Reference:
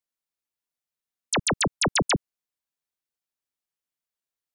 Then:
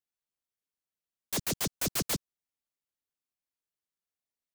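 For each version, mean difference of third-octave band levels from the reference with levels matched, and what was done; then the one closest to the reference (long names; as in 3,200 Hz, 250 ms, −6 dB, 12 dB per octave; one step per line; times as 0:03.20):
14.5 dB: in parallel at −2 dB: soft clipping −34 dBFS, distortion −9 dB
on the sum: short delay modulated by noise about 5,500 Hz, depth 0.29 ms
level −9 dB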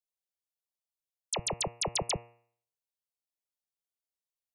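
7.5 dB: phaser with its sweep stopped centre 630 Hz, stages 4
hum removal 118 Hz, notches 24
level −5.5 dB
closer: second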